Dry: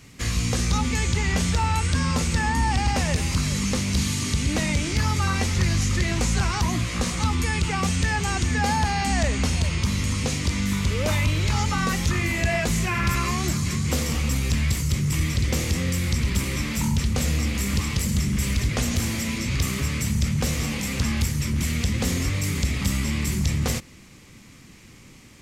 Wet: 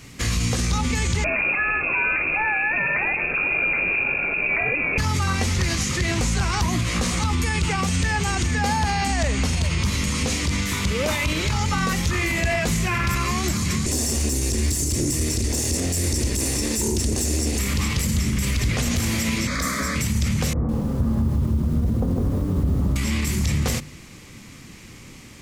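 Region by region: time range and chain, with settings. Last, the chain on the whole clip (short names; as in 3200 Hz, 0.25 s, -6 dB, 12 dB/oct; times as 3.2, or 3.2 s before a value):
1.24–4.98 HPF 130 Hz + inverted band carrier 2600 Hz
13.86–17.59 minimum comb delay 1.1 ms + EQ curve 120 Hz 0 dB, 170 Hz -7 dB, 250 Hz +7 dB, 370 Hz +10 dB, 770 Hz -1 dB, 1100 Hz -5 dB, 3400 Hz -3 dB, 5600 Hz +8 dB, 9500 Hz +12 dB, 14000 Hz +1 dB
19.47–19.96 fixed phaser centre 560 Hz, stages 8 + overdrive pedal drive 14 dB, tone 2700 Hz, clips at -14 dBFS
20.53–22.96 Bessel low-pass 710 Hz, order 8 + lo-fi delay 0.157 s, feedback 55%, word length 8-bit, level -4 dB
whole clip: de-hum 49.31 Hz, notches 5; limiter -19.5 dBFS; gain +5.5 dB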